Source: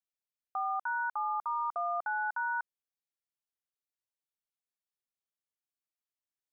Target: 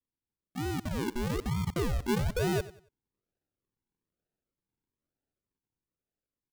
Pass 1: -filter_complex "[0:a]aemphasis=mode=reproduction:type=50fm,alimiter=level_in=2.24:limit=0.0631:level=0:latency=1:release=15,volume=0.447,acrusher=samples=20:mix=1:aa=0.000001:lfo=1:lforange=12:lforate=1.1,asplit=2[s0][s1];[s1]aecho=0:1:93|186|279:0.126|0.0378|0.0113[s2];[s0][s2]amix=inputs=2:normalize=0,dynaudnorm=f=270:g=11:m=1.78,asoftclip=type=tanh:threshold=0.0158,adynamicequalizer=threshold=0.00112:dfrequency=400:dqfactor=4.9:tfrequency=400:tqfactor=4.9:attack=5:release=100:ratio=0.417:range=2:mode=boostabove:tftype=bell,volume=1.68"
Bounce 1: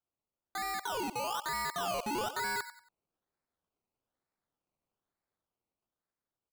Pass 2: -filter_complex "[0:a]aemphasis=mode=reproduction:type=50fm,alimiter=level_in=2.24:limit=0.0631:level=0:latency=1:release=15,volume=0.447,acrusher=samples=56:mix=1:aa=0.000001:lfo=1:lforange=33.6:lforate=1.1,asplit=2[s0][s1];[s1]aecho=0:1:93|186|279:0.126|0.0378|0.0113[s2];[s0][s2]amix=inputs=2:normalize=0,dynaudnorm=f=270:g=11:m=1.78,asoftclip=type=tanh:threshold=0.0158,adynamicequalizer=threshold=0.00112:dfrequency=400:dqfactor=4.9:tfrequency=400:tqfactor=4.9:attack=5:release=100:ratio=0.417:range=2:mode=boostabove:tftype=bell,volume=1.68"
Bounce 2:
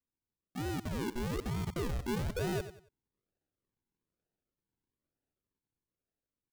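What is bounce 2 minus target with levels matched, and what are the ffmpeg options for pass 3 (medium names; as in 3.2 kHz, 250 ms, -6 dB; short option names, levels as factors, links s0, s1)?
saturation: distortion +13 dB
-filter_complex "[0:a]aemphasis=mode=reproduction:type=50fm,alimiter=level_in=2.24:limit=0.0631:level=0:latency=1:release=15,volume=0.447,acrusher=samples=56:mix=1:aa=0.000001:lfo=1:lforange=33.6:lforate=1.1,asplit=2[s0][s1];[s1]aecho=0:1:93|186|279:0.126|0.0378|0.0113[s2];[s0][s2]amix=inputs=2:normalize=0,dynaudnorm=f=270:g=11:m=1.78,asoftclip=type=tanh:threshold=0.0531,adynamicequalizer=threshold=0.00112:dfrequency=400:dqfactor=4.9:tfrequency=400:tqfactor=4.9:attack=5:release=100:ratio=0.417:range=2:mode=boostabove:tftype=bell,volume=1.68"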